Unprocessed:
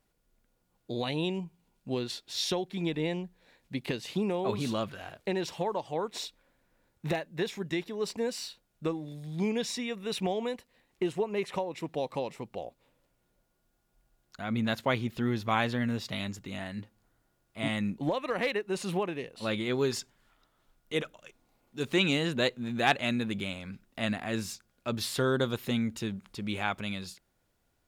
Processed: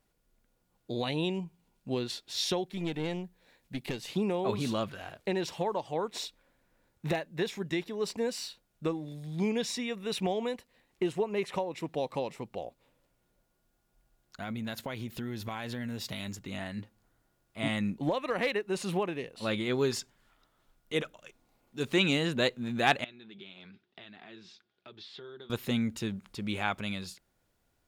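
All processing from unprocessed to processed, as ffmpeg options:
ffmpeg -i in.wav -filter_complex "[0:a]asettb=1/sr,asplit=3[link_01][link_02][link_03];[link_01]atrim=end=2.664[link_04];[link_02]atrim=start=2.66:end=4.1,asetpts=PTS-STARTPTS,afade=type=in:duration=0.004:curve=qsin,afade=type=out:start_time=1.436:duration=0.004:curve=qsin,highshelf=frequency=9400:gain=6,aeval=exprs='(tanh(20*val(0)+0.45)-tanh(0.45))/20':channel_layout=same[link_05];[link_03]atrim=start=4.096[link_06];[link_04][link_05]acrossfade=duration=0.004:curve1=hsin:curve2=qsin[link_07];[link_07][link_06]acrossfade=duration=0.004:curve1=qsin:curve2=hsin,asettb=1/sr,asplit=3[link_08][link_09][link_10];[link_08]atrim=end=14.424[link_11];[link_09]atrim=start=14.42:end=16.35,asetpts=PTS-STARTPTS,afade=type=in:duration=0.004:curve=qsin,afade=type=out:start_time=1.926:duration=0.004:curve=qsin,highshelf=frequency=8400:gain=10.5,acompressor=threshold=-33dB:ratio=6:attack=3.2:release=140:knee=1:detection=peak,bandreject=frequency=1200:width=13[link_12];[link_10]atrim=start=16.346[link_13];[link_11][link_12]acrossfade=duration=0.004:curve1=hsin:curve2=qsin[link_14];[link_14][link_13]acrossfade=duration=0.004:curve1=qsin:curve2=hsin,asettb=1/sr,asplit=3[link_15][link_16][link_17];[link_15]atrim=end=23.044[link_18];[link_16]atrim=start=23.04:end=25.5,asetpts=PTS-STARTPTS,afade=type=in:duration=0.004:curve=qsin,afade=type=out:start_time=2.456:duration=0.004:curve=qsin,acompressor=threshold=-40dB:ratio=10:attack=3.2:release=140:knee=1:detection=peak,flanger=delay=1.3:depth=4.9:regen=-55:speed=1.1:shape=triangular,highpass=180,equalizer=frequency=250:width_type=q:width=4:gain=-7,equalizer=frequency=380:width_type=q:width=4:gain=7,equalizer=frequency=540:width_type=q:width=4:gain=-8,equalizer=frequency=1100:width_type=q:width=4:gain=-3,equalizer=frequency=3500:width_type=q:width=4:gain=7,lowpass=frequency=4700:width=0.5412,lowpass=frequency=4700:width=1.3066[link_19];[link_17]atrim=start=25.496[link_20];[link_18][link_19]acrossfade=duration=0.004:curve1=hsin:curve2=qsin[link_21];[link_21][link_20]acrossfade=duration=0.004:curve1=qsin:curve2=hsin" out.wav

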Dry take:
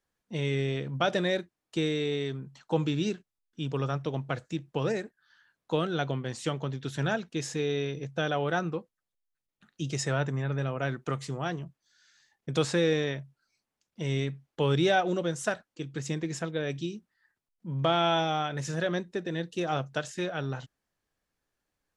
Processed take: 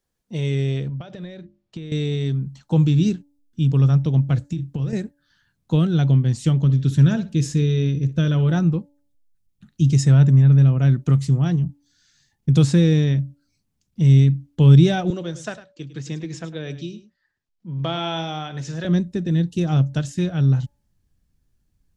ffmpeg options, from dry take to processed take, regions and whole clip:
ffmpeg -i in.wav -filter_complex "[0:a]asettb=1/sr,asplit=3[link_01][link_02][link_03];[link_01]atrim=end=0.894[link_04];[link_02]atrim=start=0.89:end=1.92,asetpts=PTS-STARTPTS,afade=type=in:duration=0.004:curve=qsin,afade=type=out:start_time=1.026:duration=0.004:curve=qsin,bandreject=frequency=50:width_type=h:width=6,bandreject=frequency=100:width_type=h:width=6,bandreject=frequency=150:width_type=h:width=6,bandreject=frequency=200:width_type=h:width=6,bandreject=frequency=250:width_type=h:width=6,bandreject=frequency=300:width_type=h:width=6,bandreject=frequency=350:width_type=h:width=6,acompressor=threshold=-36dB:ratio=16:attack=3.2:release=140:knee=1:detection=peak,lowpass=4000[link_05];[link_03]atrim=start=1.916[link_06];[link_04][link_05]acrossfade=duration=0.004:curve1=hsin:curve2=qsin[link_07];[link_07][link_06]acrossfade=duration=0.004:curve1=qsin:curve2=hsin,asettb=1/sr,asplit=3[link_08][link_09][link_10];[link_08]atrim=end=4.524[link_11];[link_09]atrim=start=4.52:end=4.93,asetpts=PTS-STARTPTS,afade=type=in:duration=0.004:curve=qsin,afade=type=out:start_time=0.406:duration=0.004:curve=qsin,asplit=2[link_12][link_13];[link_13]adelay=36,volume=-11.5dB[link_14];[link_12][link_14]amix=inputs=2:normalize=0,atrim=end_sample=18081,acompressor=threshold=-33dB:ratio=12:attack=3.2:release=140:knee=1:detection=peak[link_15];[link_10]atrim=start=4.926[link_16];[link_11][link_15]acrossfade=duration=0.004:curve1=hsin:curve2=qsin[link_17];[link_17][link_16]acrossfade=duration=0.004:curve1=qsin:curve2=hsin,asettb=1/sr,asplit=3[link_18][link_19][link_20];[link_18]atrim=end=6.624[link_21];[link_19]atrim=start=6.62:end=8.52,asetpts=PTS-STARTPTS,afade=type=in:duration=0.004:curve=qsin,afade=type=out:start_time=1.896:duration=0.004:curve=qsin,asuperstop=centerf=770:order=4:qfactor=4.3,asplit=2[link_22][link_23];[link_23]adelay=61,lowpass=frequency=5000:poles=1,volume=-14dB,asplit=2[link_24][link_25];[link_25]adelay=61,lowpass=frequency=5000:poles=1,volume=0.24,asplit=2[link_26][link_27];[link_27]adelay=61,lowpass=frequency=5000:poles=1,volume=0.24[link_28];[link_22][link_24][link_26][link_28]amix=inputs=4:normalize=0,atrim=end_sample=83790[link_29];[link_20]atrim=start=8.516[link_30];[link_21][link_29]acrossfade=duration=0.004:curve1=hsin:curve2=qsin[link_31];[link_31][link_30]acrossfade=duration=0.004:curve1=qsin:curve2=hsin,asettb=1/sr,asplit=3[link_32][link_33][link_34];[link_32]atrim=end=15.104[link_35];[link_33]atrim=start=15.1:end=18.85,asetpts=PTS-STARTPTS,afade=type=in:duration=0.004:curve=qsin,afade=type=out:start_time=3.746:duration=0.004:curve=qsin,acrossover=split=370 6600:gain=0.178 1 0.0631[link_36][link_37][link_38];[link_36][link_37][link_38]amix=inputs=3:normalize=0,aecho=1:1:103:0.2,atrim=end_sample=165375[link_39];[link_34]atrim=start=18.846[link_40];[link_35][link_39]acrossfade=duration=0.004:curve1=hsin:curve2=qsin[link_41];[link_41][link_40]acrossfade=duration=0.004:curve1=qsin:curve2=hsin,equalizer=frequency=1500:width_type=o:width=2.3:gain=-7.5,bandreject=frequency=286.6:width_type=h:width=4,bandreject=frequency=573.2:width_type=h:width=4,bandreject=frequency=859.8:width_type=h:width=4,asubboost=boost=7.5:cutoff=180,volume=6dB" out.wav

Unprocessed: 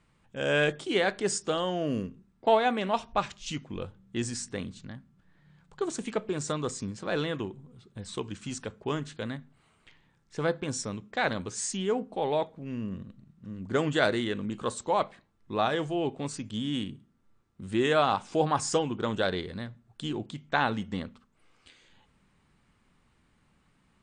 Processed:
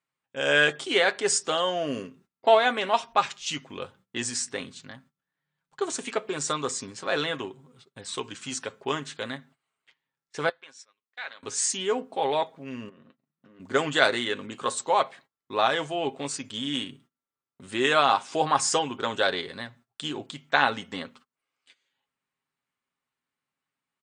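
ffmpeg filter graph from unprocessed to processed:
ffmpeg -i in.wav -filter_complex "[0:a]asettb=1/sr,asplit=3[link_01][link_02][link_03];[link_01]atrim=end=10.494[link_04];[link_02]atrim=start=10.49:end=11.43,asetpts=PTS-STARTPTS,afade=type=in:duration=0.004:curve=qsin,afade=type=out:start_time=0.936:duration=0.004:curve=qsin,lowpass=2500,aderivative[link_05];[link_03]atrim=start=11.426[link_06];[link_04][link_05]acrossfade=duration=0.004:curve1=hsin:curve2=qsin[link_07];[link_07][link_06]acrossfade=duration=0.004:curve1=qsin:curve2=hsin,asettb=1/sr,asplit=3[link_08][link_09][link_10];[link_08]atrim=end=12.894[link_11];[link_09]atrim=start=12.89:end=13.6,asetpts=PTS-STARTPTS,afade=type=in:duration=0.004:curve=qsin,afade=type=out:start_time=0.706:duration=0.004:curve=qsin,acompressor=threshold=-43dB:ratio=10:attack=3.2:release=140:knee=1:detection=peak,highpass=180,lowpass=3000,asplit=2[link_12][link_13];[link_13]adelay=13,volume=-11.5dB[link_14];[link_12][link_14]amix=inputs=2:normalize=0,atrim=end_sample=31311[link_15];[link_10]atrim=start=13.596[link_16];[link_11][link_15]acrossfade=duration=0.004:curve1=hsin:curve2=qsin[link_17];[link_17][link_16]acrossfade=duration=0.004:curve1=qsin:curve2=hsin,agate=range=-22dB:threshold=-53dB:ratio=16:detection=peak,highpass=frequency=750:poles=1,aecho=1:1:7.4:0.43,volume=6.5dB" out.wav

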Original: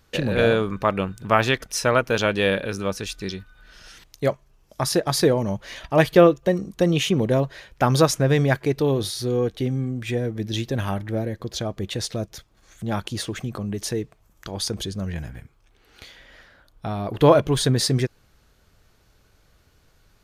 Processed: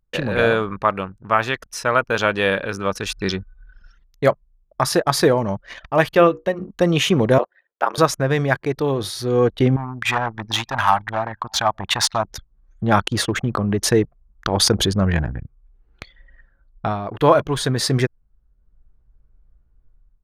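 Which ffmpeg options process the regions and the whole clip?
ffmpeg -i in.wav -filter_complex "[0:a]asettb=1/sr,asplit=3[link_01][link_02][link_03];[link_01]atrim=end=6.054[link_04];[link_02]atrim=start=6.05:end=6.69,asetpts=PTS-STARTPTS,afade=type=in:duration=0.004:curve=qsin,afade=type=out:start_time=0.636:duration=0.004:curve=qsin,equalizer=frequency=2700:width=5.1:gain=5.5,bandreject=frequency=60:width_type=h:width=6,bandreject=frequency=120:width_type=h:width=6,bandreject=frequency=180:width_type=h:width=6,bandreject=frequency=240:width_type=h:width=6,bandreject=frequency=300:width_type=h:width=6,bandreject=frequency=360:width_type=h:width=6,bandreject=frequency=420:width_type=h:width=6,bandreject=frequency=480:width_type=h:width=6[link_05];[link_03]atrim=start=6.686[link_06];[link_04][link_05]acrossfade=duration=0.004:curve1=hsin:curve2=qsin[link_07];[link_07][link_06]acrossfade=duration=0.004:curve1=qsin:curve2=hsin,asettb=1/sr,asplit=3[link_08][link_09][link_10];[link_08]atrim=end=7.384[link_11];[link_09]atrim=start=7.38:end=7.98,asetpts=PTS-STARTPTS,afade=type=in:duration=0.004:curve=qsin,afade=type=out:start_time=0.596:duration=0.004:curve=qsin,highpass=frequency=370:width=0.5412,highpass=frequency=370:width=1.3066,equalizer=frequency=6800:width=0.98:gain=-5.5,aeval=exprs='val(0)*sin(2*PI*48*n/s)':channel_layout=same[link_12];[link_10]atrim=start=7.976[link_13];[link_11][link_12]acrossfade=duration=0.004:curve1=hsin:curve2=qsin[link_14];[link_14][link_13]acrossfade=duration=0.004:curve1=qsin:curve2=hsin,asettb=1/sr,asplit=3[link_15][link_16][link_17];[link_15]atrim=end=9.764[link_18];[link_16]atrim=start=9.76:end=12.25,asetpts=PTS-STARTPTS,afade=type=in:duration=0.004:curve=qsin,afade=type=out:start_time=2.486:duration=0.004:curve=qsin,asoftclip=type=hard:threshold=-21dB,lowshelf=frequency=630:width_type=q:width=3:gain=-10.5,aecho=1:1:585:0.0794,atrim=end_sample=109809[link_19];[link_17]atrim=start=12.246[link_20];[link_18][link_19]acrossfade=duration=0.004:curve1=hsin:curve2=qsin[link_21];[link_21][link_20]acrossfade=duration=0.004:curve1=qsin:curve2=hsin,anlmdn=2.51,equalizer=frequency=1200:width_type=o:width=1.7:gain=8,dynaudnorm=framelen=370:gausssize=3:maxgain=12.5dB,volume=-1dB" out.wav

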